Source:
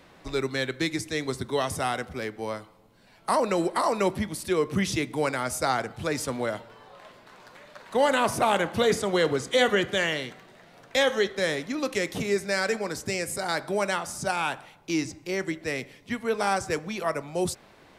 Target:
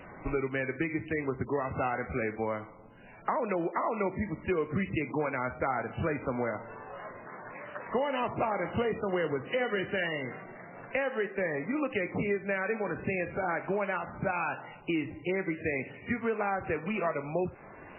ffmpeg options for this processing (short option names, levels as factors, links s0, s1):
-filter_complex "[0:a]asettb=1/sr,asplit=3[s0][s1][s2];[s0]atrim=end=7.794[s3];[s1]atrim=start=7.79:end=8.71,asetpts=PTS-STARTPTS,afade=t=in:d=0.004:c=qsin,afade=t=out:st=0.916:d=0.004:c=qsin,bandreject=f=1500:w=9.8[s4];[s2]atrim=start=8.706[s5];[s3][s4]acrossfade=d=0.004:c1=hsin:c2=qsin[s6];[s6][s5]acrossfade=d=0.004:c1=qsin:c2=hsin,acompressor=threshold=0.02:ratio=5,volume=2" -ar 8000 -c:a libmp3lame -b:a 8k